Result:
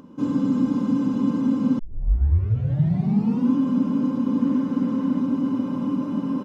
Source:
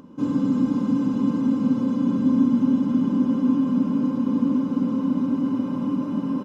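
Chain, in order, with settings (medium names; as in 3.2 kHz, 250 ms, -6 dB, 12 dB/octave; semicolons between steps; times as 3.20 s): 1.79 s: tape start 1.73 s; 4.41–5.20 s: peaking EQ 1.8 kHz +6.5 dB 0.45 oct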